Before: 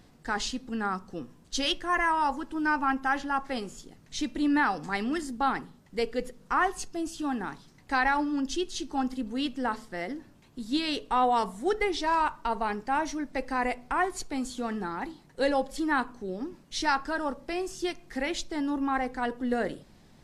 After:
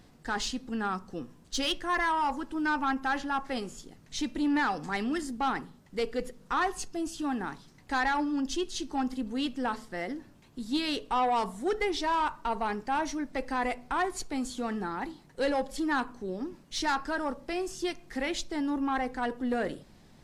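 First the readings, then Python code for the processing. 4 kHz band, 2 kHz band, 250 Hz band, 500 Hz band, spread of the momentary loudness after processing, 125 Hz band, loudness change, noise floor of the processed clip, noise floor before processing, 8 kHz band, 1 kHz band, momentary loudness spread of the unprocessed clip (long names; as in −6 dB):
−1.0 dB, −2.5 dB, −1.0 dB, −1.5 dB, 9 LU, −0.5 dB, −1.5 dB, −57 dBFS, −57 dBFS, −0.5 dB, −2.0 dB, 10 LU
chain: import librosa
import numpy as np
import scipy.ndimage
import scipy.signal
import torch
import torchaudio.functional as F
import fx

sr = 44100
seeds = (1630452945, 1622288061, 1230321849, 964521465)

y = 10.0 ** (-21.0 / 20.0) * np.tanh(x / 10.0 ** (-21.0 / 20.0))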